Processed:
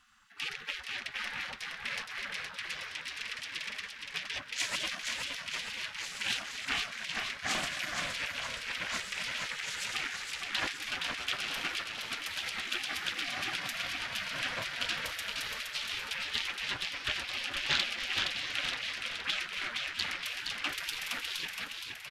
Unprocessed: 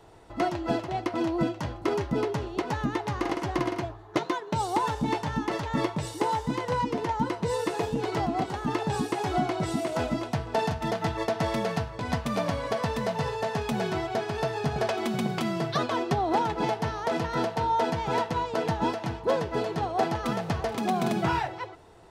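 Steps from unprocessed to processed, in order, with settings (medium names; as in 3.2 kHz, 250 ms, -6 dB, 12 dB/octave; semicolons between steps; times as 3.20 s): in parallel at +1 dB: peak limiter -21 dBFS, peak gain reduction 8.5 dB; on the sum: high-pass 72 Hz 24 dB/octave; formant shift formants -3 st; ten-band graphic EQ 125 Hz -5 dB, 250 Hz -5 dB, 500 Hz +9 dB, 2 kHz -10 dB, 4 kHz -6 dB, 8 kHz -10 dB; Chebyshev shaper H 4 -11 dB, 6 -14 dB, 8 -9 dB, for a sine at -4.5 dBFS; spectral gate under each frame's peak -25 dB weak; on a send: frequency-shifting echo 468 ms, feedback 53%, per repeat -51 Hz, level -4.5 dB; on the sum: loudspeaker Doppler distortion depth 0.28 ms; trim +1 dB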